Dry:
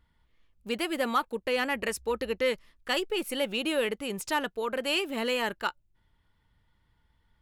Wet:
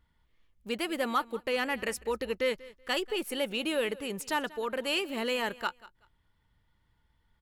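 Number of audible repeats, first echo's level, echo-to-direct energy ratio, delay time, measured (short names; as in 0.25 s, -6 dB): 2, -20.0 dB, -20.0 dB, 0.189 s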